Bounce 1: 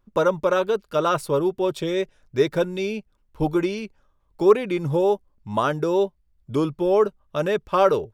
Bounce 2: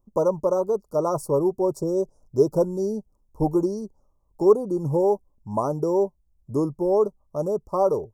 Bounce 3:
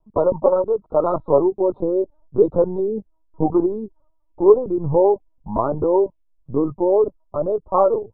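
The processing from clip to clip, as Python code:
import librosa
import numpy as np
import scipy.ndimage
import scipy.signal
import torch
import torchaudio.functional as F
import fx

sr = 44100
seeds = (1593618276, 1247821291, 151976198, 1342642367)

y1 = scipy.signal.sosfilt(scipy.signal.cheby2(4, 50, [1700.0, 3500.0], 'bandstop', fs=sr, output='sos'), x)
y1 = fx.dynamic_eq(y1, sr, hz=2700.0, q=1.5, threshold_db=-46.0, ratio=4.0, max_db=5)
y1 = fx.rider(y1, sr, range_db=10, speed_s=2.0)
y1 = F.gain(torch.from_numpy(y1), -1.0).numpy()
y2 = fx.lpc_vocoder(y1, sr, seeds[0], excitation='pitch_kept', order=16)
y2 = fx.bell_lfo(y2, sr, hz=2.2, low_hz=730.0, high_hz=2700.0, db=9)
y2 = F.gain(torch.from_numpy(y2), 3.5).numpy()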